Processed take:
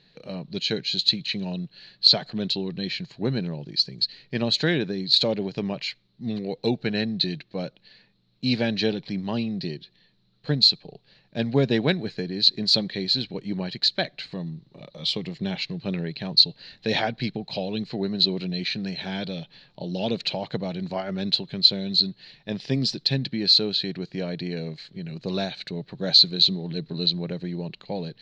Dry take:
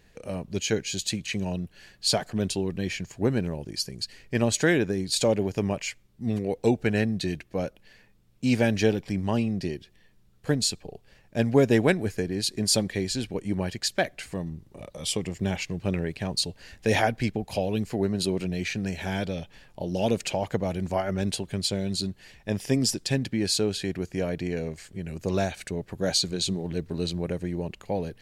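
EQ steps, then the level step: resonant low-pass 4.1 kHz, resonance Q 11; distance through air 68 m; resonant low shelf 110 Hz -8 dB, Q 3; -3.0 dB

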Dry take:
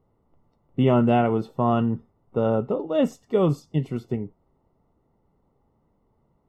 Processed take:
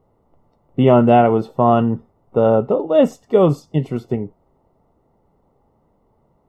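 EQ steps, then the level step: peaking EQ 650 Hz +5.5 dB 1.4 oct; +4.5 dB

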